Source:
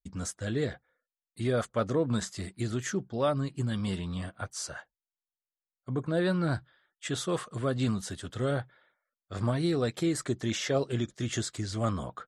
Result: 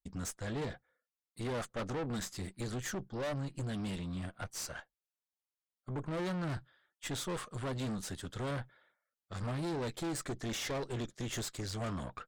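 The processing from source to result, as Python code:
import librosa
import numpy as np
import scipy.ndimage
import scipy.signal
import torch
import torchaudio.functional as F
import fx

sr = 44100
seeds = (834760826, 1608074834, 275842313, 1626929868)

y = fx.tube_stage(x, sr, drive_db=35.0, bias=0.75)
y = F.gain(torch.from_numpy(y), 1.0).numpy()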